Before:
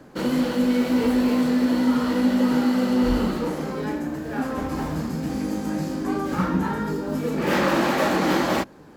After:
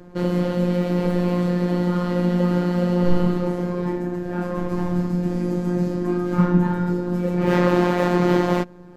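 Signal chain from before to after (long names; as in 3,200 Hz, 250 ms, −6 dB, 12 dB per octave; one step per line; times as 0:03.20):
spectral tilt −2.5 dB per octave
phases set to zero 177 Hz
level +1.5 dB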